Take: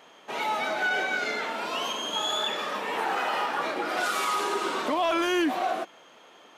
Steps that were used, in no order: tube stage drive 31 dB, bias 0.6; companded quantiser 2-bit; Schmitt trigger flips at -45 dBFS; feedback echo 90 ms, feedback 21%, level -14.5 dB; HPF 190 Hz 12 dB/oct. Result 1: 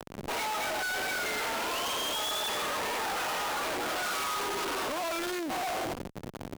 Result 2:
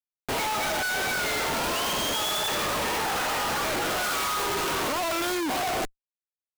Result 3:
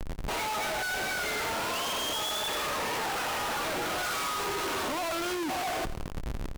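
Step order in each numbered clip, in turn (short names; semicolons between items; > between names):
feedback echo > Schmitt trigger > companded quantiser > HPF > tube stage; tube stage > feedback echo > companded quantiser > HPF > Schmitt trigger; HPF > Schmitt trigger > companded quantiser > tube stage > feedback echo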